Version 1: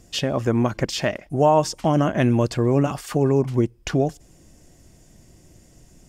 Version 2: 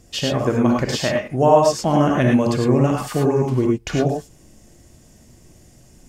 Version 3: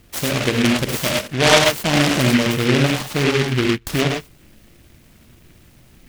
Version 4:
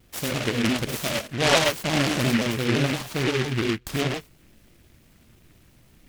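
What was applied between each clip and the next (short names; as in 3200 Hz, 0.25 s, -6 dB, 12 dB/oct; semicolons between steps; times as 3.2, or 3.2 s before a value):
non-linear reverb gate 0.13 s rising, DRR -0.5 dB
noise-modulated delay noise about 2100 Hz, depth 0.22 ms
shaped vibrato saw down 5.8 Hz, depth 160 cents; gain -6.5 dB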